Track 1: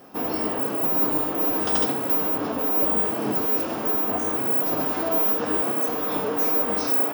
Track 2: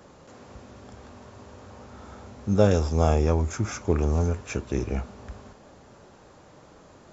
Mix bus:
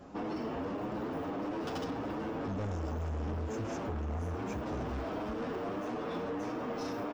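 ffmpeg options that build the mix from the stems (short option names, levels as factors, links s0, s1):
-filter_complex "[0:a]lowshelf=f=260:g=7.5,adynamicsmooth=sensitivity=4:basefreq=4500,asplit=2[s0][s1];[s1]adelay=8.3,afreqshift=1.6[s2];[s0][s2]amix=inputs=2:normalize=1,volume=0.75[s3];[1:a]lowshelf=f=180:g=10.5,volume=0.299[s4];[s3][s4]amix=inputs=2:normalize=0,asoftclip=type=tanh:threshold=0.0422,acompressor=threshold=0.02:ratio=6"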